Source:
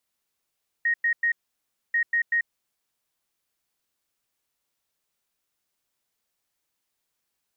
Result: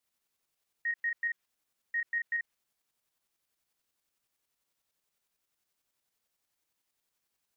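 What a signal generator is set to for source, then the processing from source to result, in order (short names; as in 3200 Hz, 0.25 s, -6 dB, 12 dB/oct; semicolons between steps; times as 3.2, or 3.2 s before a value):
beep pattern sine 1870 Hz, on 0.09 s, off 0.10 s, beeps 3, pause 0.62 s, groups 2, -19.5 dBFS
dynamic EQ 1900 Hz, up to +5 dB, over -37 dBFS, Q 0.92; limiter -26 dBFS; tremolo saw up 11 Hz, depth 50%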